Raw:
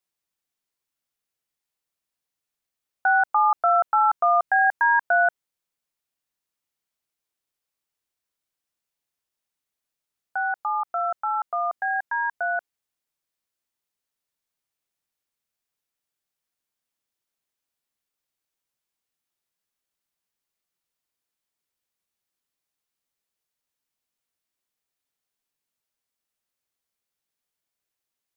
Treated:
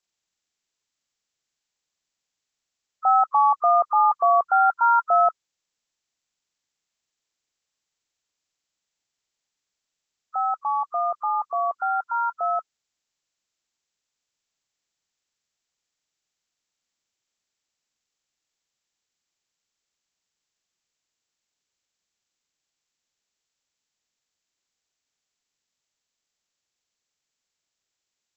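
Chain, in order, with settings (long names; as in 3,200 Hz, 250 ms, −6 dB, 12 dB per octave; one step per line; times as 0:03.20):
hearing-aid frequency compression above 1,000 Hz 1.5 to 1
level +1.5 dB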